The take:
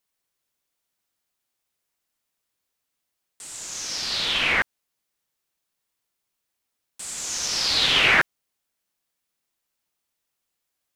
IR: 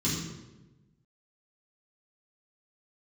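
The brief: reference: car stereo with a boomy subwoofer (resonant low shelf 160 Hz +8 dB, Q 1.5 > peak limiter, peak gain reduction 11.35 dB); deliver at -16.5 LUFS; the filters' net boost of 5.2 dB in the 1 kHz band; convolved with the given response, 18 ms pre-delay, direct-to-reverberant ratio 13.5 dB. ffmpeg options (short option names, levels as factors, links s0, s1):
-filter_complex "[0:a]equalizer=f=1000:t=o:g=7,asplit=2[s0][s1];[1:a]atrim=start_sample=2205,adelay=18[s2];[s1][s2]afir=irnorm=-1:irlink=0,volume=0.0891[s3];[s0][s3]amix=inputs=2:normalize=0,lowshelf=f=160:t=q:w=1.5:g=8,volume=2.51,alimiter=limit=0.473:level=0:latency=1"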